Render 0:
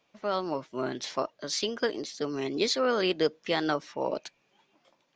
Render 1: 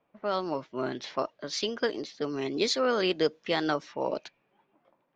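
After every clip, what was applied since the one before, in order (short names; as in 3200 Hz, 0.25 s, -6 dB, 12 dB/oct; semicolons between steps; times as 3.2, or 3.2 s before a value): low-pass opened by the level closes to 1400 Hz, open at -24 dBFS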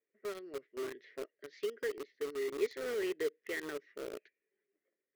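double band-pass 890 Hz, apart 2.2 oct; in parallel at -3 dB: requantised 6-bit, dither none; on the sum: gain -6 dB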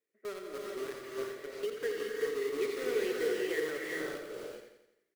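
feedback echo 86 ms, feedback 51%, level -7.5 dB; non-linear reverb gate 0.44 s rising, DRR -1.5 dB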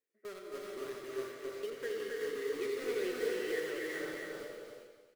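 flange 1.1 Hz, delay 7.5 ms, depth 4.6 ms, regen +58%; feedback echo 0.27 s, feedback 24%, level -4 dB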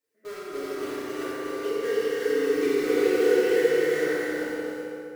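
FDN reverb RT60 2.7 s, high-frequency decay 0.45×, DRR -10 dB; gain +1.5 dB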